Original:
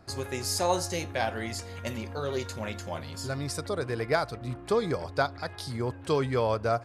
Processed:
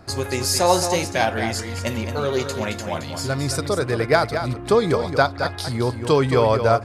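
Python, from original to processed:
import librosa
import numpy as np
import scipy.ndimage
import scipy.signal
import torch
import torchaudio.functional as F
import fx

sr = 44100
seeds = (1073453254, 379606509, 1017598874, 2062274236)

y = x + 10.0 ** (-8.5 / 20.0) * np.pad(x, (int(220 * sr / 1000.0), 0))[:len(x)]
y = y * 10.0 ** (9.0 / 20.0)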